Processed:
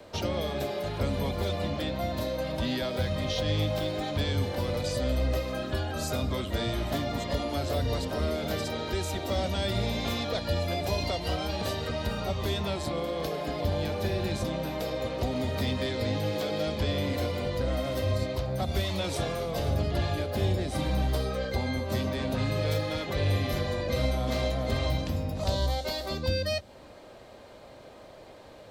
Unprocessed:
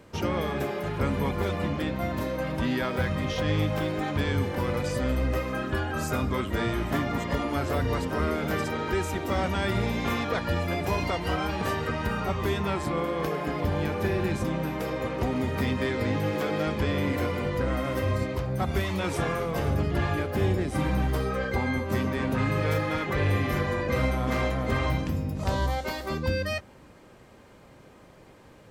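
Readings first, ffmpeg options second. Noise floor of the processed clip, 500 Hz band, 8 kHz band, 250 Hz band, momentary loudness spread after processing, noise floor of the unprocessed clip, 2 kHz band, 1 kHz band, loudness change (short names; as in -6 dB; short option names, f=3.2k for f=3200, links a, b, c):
-49 dBFS, -1.0 dB, +1.0 dB, -4.0 dB, 4 LU, -52 dBFS, -6.0 dB, -4.5 dB, -2.0 dB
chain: -filter_complex "[0:a]acrossover=split=490|3000[a][b][c];[b]acompressor=threshold=-42dB:ratio=5[d];[a][d][c]amix=inputs=3:normalize=0,equalizer=f=160:t=o:w=0.67:g=-5,equalizer=f=630:t=o:w=0.67:g=10,equalizer=f=4k:t=o:w=0.67:g=9,acrossover=split=290|460|5100[e][f][g][h];[f]acompressor=threshold=-53dB:ratio=6[i];[e][i][g][h]amix=inputs=4:normalize=0"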